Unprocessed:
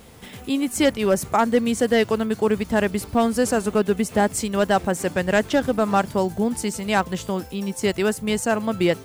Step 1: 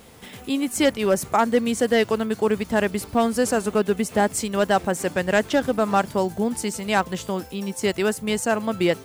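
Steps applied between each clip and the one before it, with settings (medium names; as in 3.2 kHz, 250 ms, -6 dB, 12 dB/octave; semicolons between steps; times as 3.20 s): bass shelf 150 Hz -5.5 dB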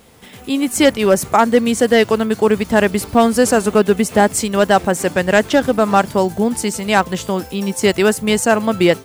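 level rider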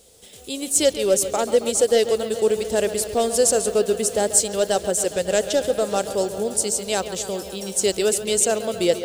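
graphic EQ 125/250/500/1000/2000/4000/8000 Hz -7/-9/+7/-11/-8/+4/+10 dB; on a send: bucket-brigade echo 137 ms, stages 4096, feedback 77%, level -12.5 dB; on the sum: trim -6 dB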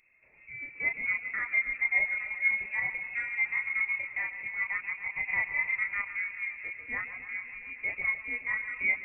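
chorus voices 2, 0.45 Hz, delay 30 ms, depth 2.4 ms; frequency inversion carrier 2.6 kHz; trim -7.5 dB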